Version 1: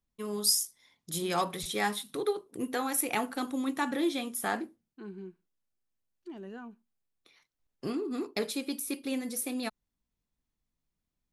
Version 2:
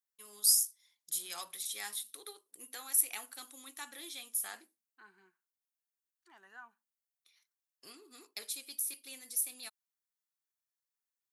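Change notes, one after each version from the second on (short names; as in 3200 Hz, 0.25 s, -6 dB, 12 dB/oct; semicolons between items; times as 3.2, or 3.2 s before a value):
second voice: add band shelf 1200 Hz +14.5 dB; master: add differentiator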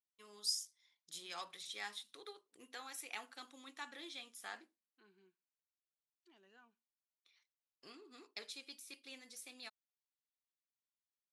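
second voice: add band shelf 1200 Hz -14.5 dB; master: add air absorption 130 m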